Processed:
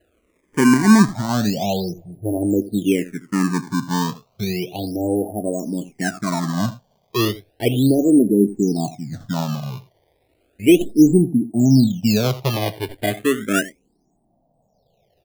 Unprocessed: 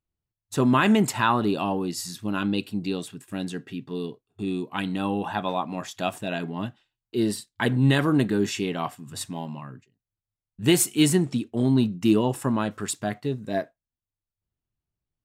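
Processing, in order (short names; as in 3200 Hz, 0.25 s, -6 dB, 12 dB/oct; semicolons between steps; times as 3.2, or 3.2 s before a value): tracing distortion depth 0.029 ms; AGC gain up to 12 dB; gate -37 dBFS, range -11 dB; in parallel at -10 dB: requantised 6-bit, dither triangular; on the sum: elliptic low-pass 710 Hz, stop band 50 dB; on a send: echo 83 ms -16.5 dB; on the sum: decimation with a swept rate 19×, swing 160% 0.33 Hz; endless phaser -0.38 Hz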